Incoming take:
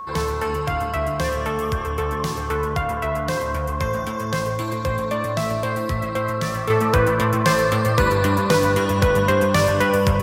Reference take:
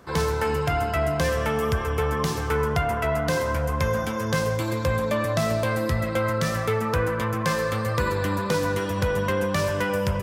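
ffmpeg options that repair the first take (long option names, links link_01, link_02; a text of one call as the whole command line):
ffmpeg -i in.wav -af "bandreject=frequency=1100:width=30,asetnsamples=nb_out_samples=441:pad=0,asendcmd='6.7 volume volume -6.5dB',volume=0dB" out.wav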